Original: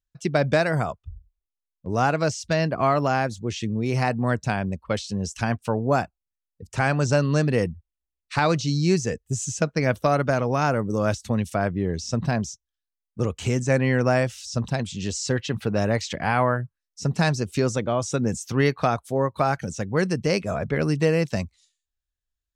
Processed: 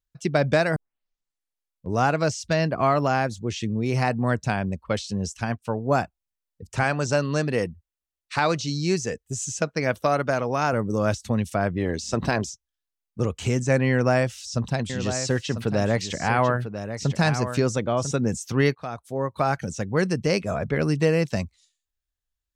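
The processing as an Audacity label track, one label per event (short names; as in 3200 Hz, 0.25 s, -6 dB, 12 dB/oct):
0.760000	0.760000	tape start 1.13 s
5.360000	5.950000	upward expander, over -32 dBFS
6.830000	10.730000	low shelf 220 Hz -7.5 dB
11.760000	12.490000	spectral limiter ceiling under each frame's peak by 13 dB
13.900000	18.140000	echo 0.996 s -9.5 dB
18.750000	19.540000	fade in, from -17 dB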